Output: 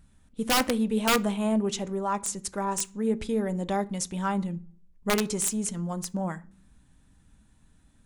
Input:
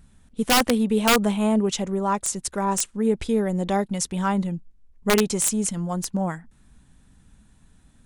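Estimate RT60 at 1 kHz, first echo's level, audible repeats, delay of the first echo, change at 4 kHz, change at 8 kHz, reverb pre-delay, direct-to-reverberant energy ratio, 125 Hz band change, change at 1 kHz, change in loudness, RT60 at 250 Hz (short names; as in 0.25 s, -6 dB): 0.35 s, none, none, none, -5.0 dB, -5.0 dB, 3 ms, 11.5 dB, -5.0 dB, -4.5 dB, -5.0 dB, 0.70 s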